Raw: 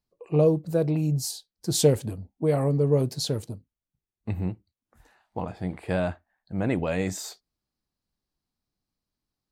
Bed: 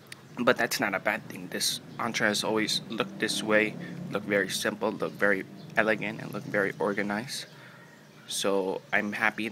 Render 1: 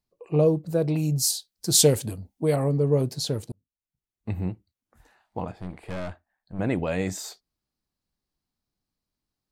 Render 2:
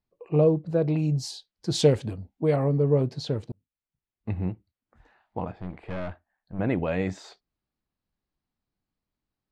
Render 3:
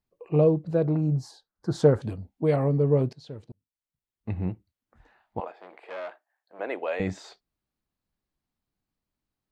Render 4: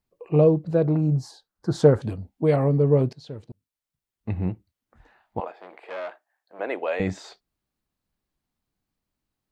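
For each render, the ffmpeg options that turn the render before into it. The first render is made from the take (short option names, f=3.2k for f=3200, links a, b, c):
-filter_complex "[0:a]asettb=1/sr,asplit=3[a][b][c];[a]atrim=end=0.884[d];[b]atrim=start=0.88:end=2.56,asetpts=PTS-STARTPTS,afade=t=in:d=0.004:c=qsin,afade=t=out:st=1.676:d=0.004:c=qsin,highshelf=f=2.6k:g=9.5[e];[c]atrim=start=2.556[f];[d][e]acrossfade=d=0.004:c1=hsin:c2=qsin[g];[g][f]acrossfade=d=0.004:c1=qsin:c2=hsin,asettb=1/sr,asplit=3[h][i][j];[h]atrim=end=5.514[k];[i]atrim=start=5.51:end=6.59,asetpts=PTS-STARTPTS,afade=t=in:d=0.004:c=qsin,afade=t=out:st=1.076:d=0.004:c=qsin,aeval=exprs='(tanh(31.6*val(0)+0.65)-tanh(0.65))/31.6':c=same[l];[j]atrim=start=6.586[m];[k][l]acrossfade=d=0.004:c1=hsin:c2=qsin[n];[n][m]acrossfade=d=0.004:c1=qsin:c2=hsin,asplit=2[o][p];[o]atrim=end=3.52,asetpts=PTS-STARTPTS,afade=t=out:st=3.516:d=0.004:c=hsin[q];[p]atrim=start=3.52,asetpts=PTS-STARTPTS,afade=t=in:d=0.79[r];[q][r]concat=n=2:v=0:a=1"
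-af "lowpass=3.1k"
-filter_complex "[0:a]asettb=1/sr,asplit=3[a][b][c];[a]atrim=end=0.854[d];[b]atrim=start=0.85:end=2.02,asetpts=PTS-STARTPTS,afade=t=in:d=0.004:c=qsin,afade=t=out:st=1.166:d=0.004:c=qsin,highshelf=f=1.9k:t=q:w=3:g=-10.5[e];[c]atrim=start=2.016[f];[d][e]acrossfade=d=0.004:c1=hsin:c2=qsin[g];[g][f]acrossfade=d=0.004:c1=qsin:c2=hsin,asettb=1/sr,asplit=3[h][i][j];[h]atrim=end=5.404[k];[i]atrim=start=5.4:end=7,asetpts=PTS-STARTPTS,afade=t=in:d=0.004:c=qsin,afade=t=out:st=1.596:d=0.004:c=qsin,highpass=f=420:w=0.5412,highpass=f=420:w=1.3066[l];[j]atrim=start=6.996[m];[k][l]acrossfade=d=0.004:c1=hsin:c2=qsin[n];[n][m]acrossfade=d=0.004:c1=qsin:c2=hsin,asplit=2[o][p];[o]atrim=end=3.13,asetpts=PTS-STARTPTS,afade=t=out:st=3.126:d=0.004:c=hsin:silence=0.141254[q];[p]atrim=start=3.13,asetpts=PTS-STARTPTS,afade=t=in:d=1.39:silence=0.141254[r];[q][r]concat=n=2:v=0:a=1"
-af "volume=3dB"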